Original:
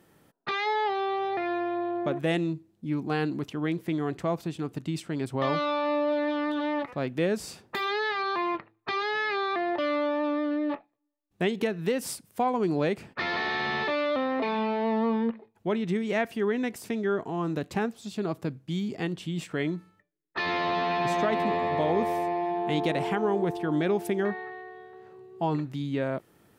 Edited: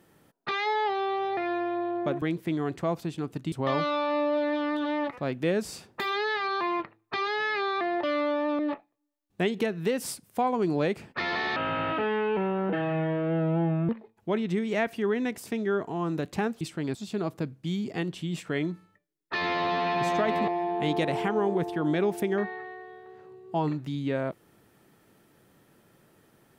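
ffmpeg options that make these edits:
-filter_complex "[0:a]asplit=9[s0][s1][s2][s3][s4][s5][s6][s7][s8];[s0]atrim=end=2.222[s9];[s1]atrim=start=3.628:end=4.932[s10];[s2]atrim=start=5.268:end=10.342[s11];[s3]atrim=start=10.598:end=13.574[s12];[s4]atrim=start=13.57:end=15.27,asetpts=PTS-STARTPTS,asetrate=32193,aresample=44100[s13];[s5]atrim=start=15.266:end=17.992[s14];[s6]atrim=start=4.928:end=5.272[s15];[s7]atrim=start=17.988:end=21.522[s16];[s8]atrim=start=22.348[s17];[s9][s10]acrossfade=d=0.004:c1=hsin:c2=hsin[s18];[s18][s11]acrossfade=d=0.004:c1=hsin:c2=hsin[s19];[s19][s12]acrossfade=d=0.004:c1=hsin:c2=hsin[s20];[s20][s13]acrossfade=d=0.004:c1=hsin:c2=hsin[s21];[s21][s14]acrossfade=d=0.004:c1=hsin:c2=hsin[s22];[s22][s15]acrossfade=d=0.004:c1=hsin:c2=hsin[s23];[s23][s16]acrossfade=d=0.004:c1=hsin:c2=hsin[s24];[s24][s17]acrossfade=d=0.004:c1=hsin:c2=hsin"

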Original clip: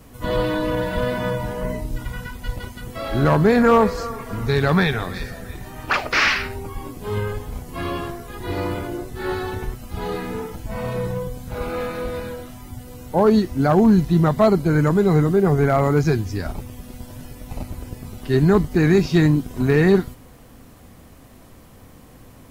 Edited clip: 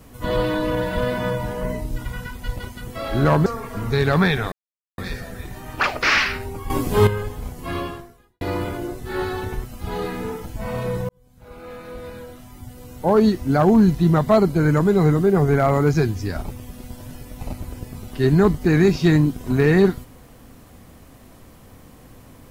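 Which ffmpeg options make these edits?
-filter_complex "[0:a]asplit=7[s0][s1][s2][s3][s4][s5][s6];[s0]atrim=end=3.462[s7];[s1]atrim=start=4.018:end=5.08,asetpts=PTS-STARTPTS,afade=t=out:st=1.058:d=0.004:c=hsin,apad=pad_dur=0.46[s8];[s2]atrim=start=5.08:end=6.802,asetpts=PTS-STARTPTS,afade=t=in:d=0.004:c=hsin[s9];[s3]atrim=start=6.798:end=7.172,asetpts=PTS-STARTPTS,volume=3.76[s10];[s4]atrim=start=7.168:end=8.51,asetpts=PTS-STARTPTS,afade=t=out:st=0.712:d=0.63:c=qua[s11];[s5]atrim=start=8.51:end=11.19,asetpts=PTS-STARTPTS,afade=t=in:d=0.004:c=hsin,afade=t=out:st=2.676:d=0.004:c=hsin[s12];[s6]atrim=start=11.19,asetpts=PTS-STARTPTS,afade=t=in:d=2.18[s13];[s8][s9]concat=n=2:v=0:a=1[s14];[s7][s14]acrossfade=d=0.004:c1=hsin:c2=hsin[s15];[s15][s10]acrossfade=d=0.004:c1=hsin:c2=hsin[s16];[s11][s12][s13]concat=n=3:v=0:a=1[s17];[s16][s17]acrossfade=d=0.004:c1=hsin:c2=hsin"

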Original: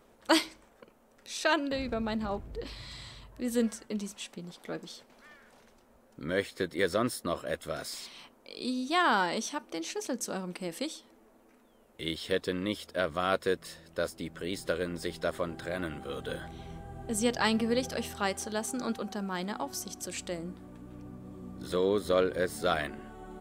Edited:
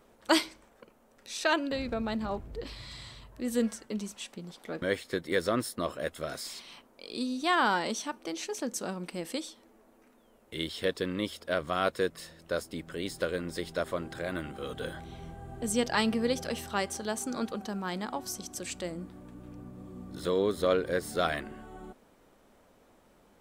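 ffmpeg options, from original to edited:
-filter_complex "[0:a]asplit=2[s0][s1];[s0]atrim=end=4.822[s2];[s1]atrim=start=6.288[s3];[s2][s3]acrossfade=d=0.004:c1=hsin:c2=hsin"

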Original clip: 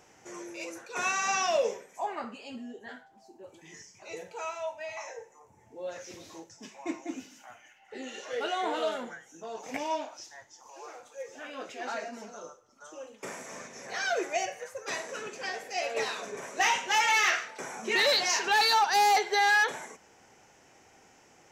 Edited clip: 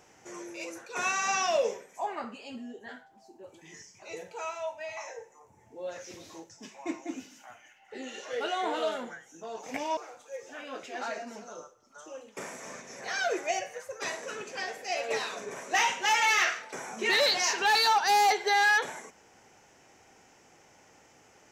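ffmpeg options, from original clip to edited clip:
-filter_complex "[0:a]asplit=2[s0][s1];[s0]atrim=end=9.972[s2];[s1]atrim=start=10.828[s3];[s2][s3]acrossfade=d=0.004:c1=hsin:c2=hsin"

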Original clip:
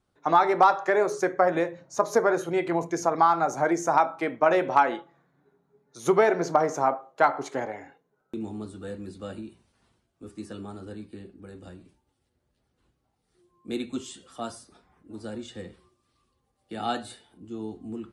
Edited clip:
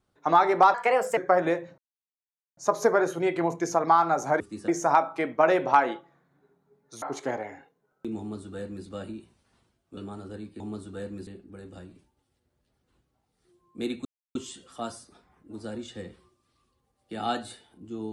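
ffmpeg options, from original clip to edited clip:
-filter_complex "[0:a]asplit=11[s0][s1][s2][s3][s4][s5][s6][s7][s8][s9][s10];[s0]atrim=end=0.744[s11];[s1]atrim=start=0.74:end=1.27,asetpts=PTS-STARTPTS,asetrate=54243,aresample=44100,atrim=end_sample=19002,asetpts=PTS-STARTPTS[s12];[s2]atrim=start=1.266:end=1.88,asetpts=PTS-STARTPTS,afade=t=out:st=0.61:d=0.004:c=hsin,apad=pad_dur=0.79[s13];[s3]atrim=start=1.88:end=3.712,asetpts=PTS-STARTPTS,afade=t=in:d=0.004:c=hsin[s14];[s4]atrim=start=10.258:end=10.542[s15];[s5]atrim=start=3.708:end=6.052[s16];[s6]atrim=start=7.308:end=10.262[s17];[s7]atrim=start=10.538:end=11.172[s18];[s8]atrim=start=8.478:end=9.152[s19];[s9]atrim=start=11.168:end=13.95,asetpts=PTS-STARTPTS,afade=t=out:st=2.778:d=0.004:c=hsin,apad=pad_dur=0.3[s20];[s10]atrim=start=13.95,asetpts=PTS-STARTPTS,afade=t=in:d=0.004:c=hsin[s21];[s11][s12]acrossfade=d=0.004:c1=hsin:c2=hsin[s22];[s13][s14]concat=n=2:v=0:a=1[s23];[s22][s23]acrossfade=d=0.004:c1=hsin:c2=hsin[s24];[s24][s15]acrossfade=d=0.004:c1=hsin:c2=hsin[s25];[s25][s16]acrossfade=d=0.004:c1=hsin:c2=hsin[s26];[s26][s17]acrossfade=d=0.004:c1=hsin:c2=hsin[s27];[s27][s18]acrossfade=d=0.004:c1=hsin:c2=hsin[s28];[s28][s19]acrossfade=d=0.004:c1=hsin:c2=hsin[s29];[s20][s21]concat=n=2:v=0:a=1[s30];[s29][s30]acrossfade=d=0.004:c1=hsin:c2=hsin"

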